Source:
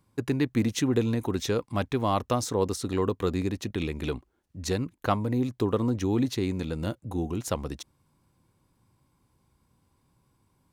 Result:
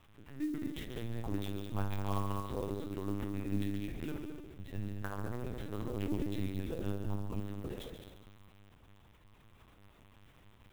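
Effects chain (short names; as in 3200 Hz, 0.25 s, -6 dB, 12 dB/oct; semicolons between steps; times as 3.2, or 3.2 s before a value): 3.51–4.84 bell 67 Hz +7 dB 2.7 oct; in parallel at 0 dB: limiter -22.5 dBFS, peak gain reduction 11.5 dB; on the sum: auto swell 0.626 s; compressor 6:1, threshold -35 dBFS, peak gain reduction 16 dB; resonator 100 Hz, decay 0.37 s, harmonics odd, mix 90%; crackle 360/s -59 dBFS; on a send: multi-head echo 70 ms, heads all three, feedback 50%, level -10 dB; on the sum: LPC vocoder at 8 kHz pitch kept; clock jitter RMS 0.025 ms; gain +10.5 dB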